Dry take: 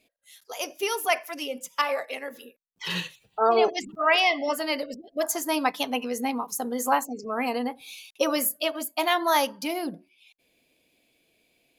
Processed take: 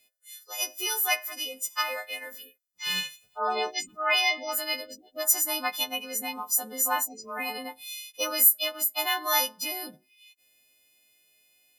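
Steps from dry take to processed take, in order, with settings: frequency quantiser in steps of 3 st; bell 290 Hz -7.5 dB 2.2 oct; gain -4.5 dB

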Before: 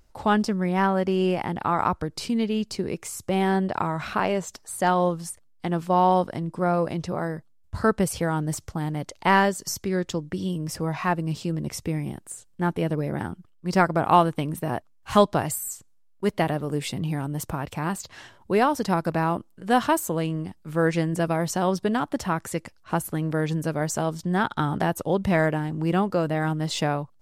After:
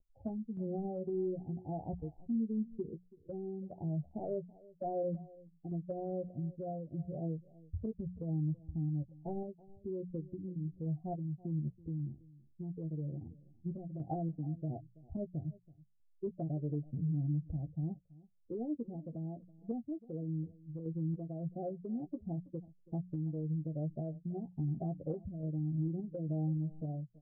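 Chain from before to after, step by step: per-bin expansion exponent 2; steep low-pass 740 Hz 96 dB/oct; notches 60/120/180 Hz; treble ducked by the level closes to 310 Hz, closed at -25.5 dBFS; compressor, threshold -35 dBFS, peak gain reduction 13 dB; limiter -34 dBFS, peak gain reduction 7 dB; random-step tremolo; doubler 13 ms -7.5 dB; on a send: echo 0.329 s -21 dB; on the sum: gain +4.5 dB

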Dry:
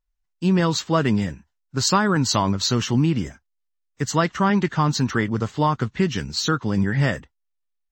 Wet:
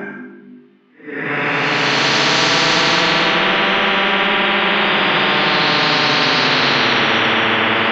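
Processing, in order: steep high-pass 210 Hz 36 dB/oct; notches 50/100/150/200/250/300/350/400 Hz; treble ducked by the level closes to 2100 Hz, closed at -19.5 dBFS; LPF 2700 Hz 24 dB/oct; in parallel at +1 dB: limiter -16.5 dBFS, peak gain reduction 10 dB; on the sum: Paulstretch 4.3×, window 0.50 s, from 3.52; on a send at -13 dB: reverb RT60 1.2 s, pre-delay 47 ms; on the sum: spectral compressor 10:1; gain +4.5 dB

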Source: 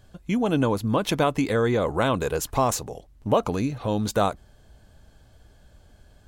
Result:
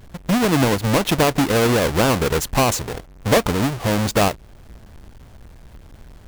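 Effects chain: half-waves squared off; in parallel at -1.5 dB: compressor, threshold -32 dBFS, peak gain reduction 17.5 dB

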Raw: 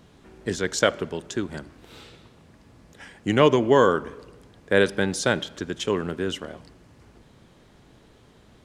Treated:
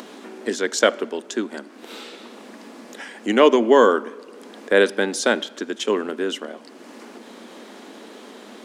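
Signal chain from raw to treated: elliptic high-pass 220 Hz, stop band 40 dB; upward compressor, threshold -33 dBFS; gain +4 dB

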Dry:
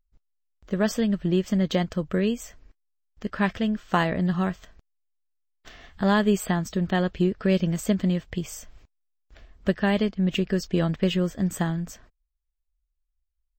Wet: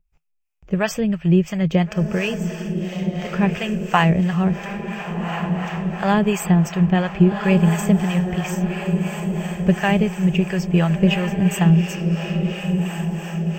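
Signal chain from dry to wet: thirty-one-band EQ 160 Hz +11 dB, 250 Hz -9 dB, 800 Hz +5 dB, 2500 Hz +12 dB, 4000 Hz -11 dB; diffused feedback echo 1.444 s, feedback 51%, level -6 dB; harmonic tremolo 2.9 Hz, depth 70%, crossover 580 Hz; gain +6 dB

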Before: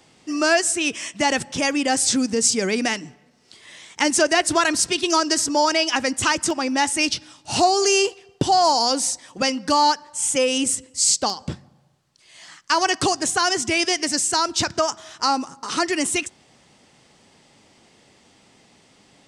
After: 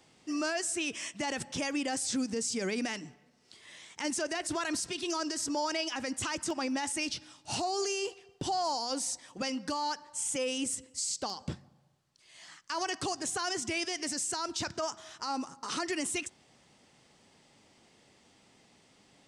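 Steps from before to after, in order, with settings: limiter -16.5 dBFS, peak gain reduction 11.5 dB; gain -8 dB

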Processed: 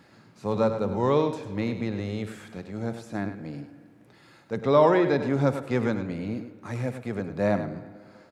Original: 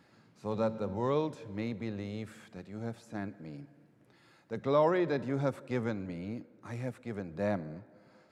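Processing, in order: echo 0.101 s -10 dB; reverb RT60 1.9 s, pre-delay 49 ms, DRR 16 dB; gain +7.5 dB

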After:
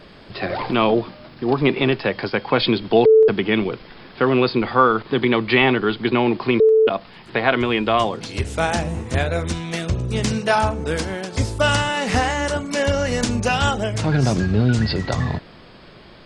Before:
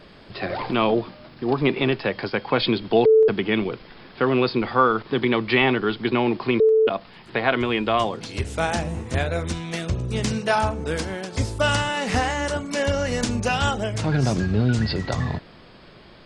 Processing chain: 4.36–6.39 notch 5300 Hz, Q 16; gain +3 dB

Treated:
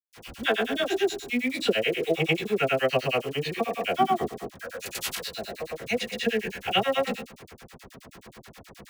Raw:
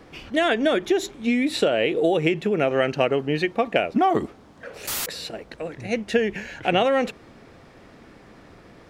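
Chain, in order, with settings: spectral trails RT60 0.62 s; dynamic EQ 2900 Hz, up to +5 dB, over -39 dBFS, Q 1.6; in parallel at -3 dB: compressor 5:1, threshold -31 dBFS, peak gain reduction 16.5 dB; on the sum: grains 0.1 s, grains 9.4/s, pitch spread up and down by 0 st; bit-crush 7-bit; notch comb 300 Hz; dispersion lows, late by 46 ms, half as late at 1200 Hz; gain -2.5 dB

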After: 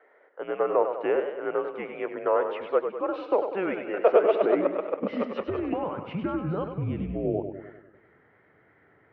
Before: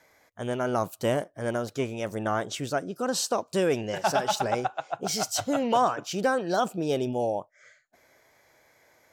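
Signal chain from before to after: mistuned SSB -190 Hz 160–2700 Hz; high-pass sweep 510 Hz -> 100 Hz, 3.86–6.64; 5.44–7.25 compressor, threshold -27 dBFS, peak gain reduction 10 dB; warbling echo 99 ms, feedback 55%, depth 105 cents, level -8 dB

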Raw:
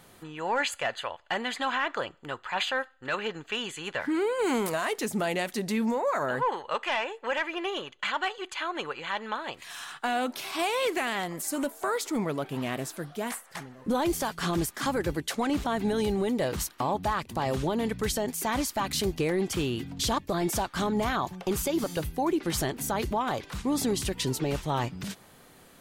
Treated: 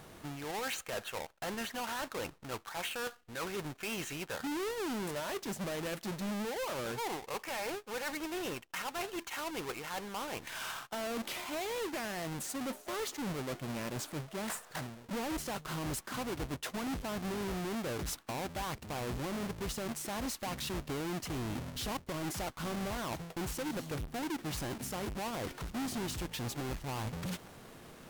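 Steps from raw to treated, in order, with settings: half-waves squared off; reverse; compressor 6:1, threshold -33 dBFS, peak gain reduction 11.5 dB; reverse; sample leveller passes 1; speed mistake 48 kHz file played as 44.1 kHz; gain -6.5 dB

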